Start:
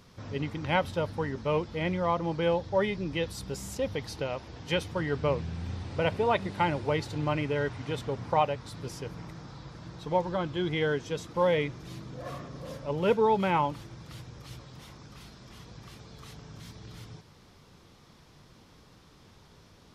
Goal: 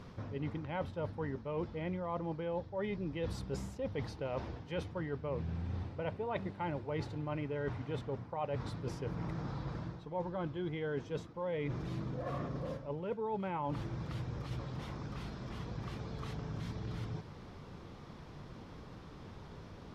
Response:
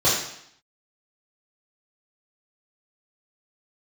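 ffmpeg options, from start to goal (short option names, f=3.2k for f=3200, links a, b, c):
-af "lowpass=f=1.4k:p=1,areverse,acompressor=threshold=-42dB:ratio=10,areverse,volume=7dB"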